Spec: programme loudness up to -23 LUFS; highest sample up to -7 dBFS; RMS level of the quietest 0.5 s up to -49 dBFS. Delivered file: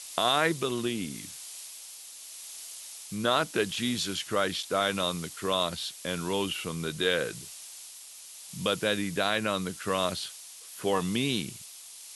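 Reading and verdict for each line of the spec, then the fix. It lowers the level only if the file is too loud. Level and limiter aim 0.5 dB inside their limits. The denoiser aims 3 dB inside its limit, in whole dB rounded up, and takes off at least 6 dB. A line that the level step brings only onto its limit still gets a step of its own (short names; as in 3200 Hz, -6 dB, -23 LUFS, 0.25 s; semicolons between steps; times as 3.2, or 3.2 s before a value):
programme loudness -29.5 LUFS: OK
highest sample -11.0 dBFS: OK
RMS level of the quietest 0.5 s -47 dBFS: fail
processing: denoiser 6 dB, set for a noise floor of -47 dBFS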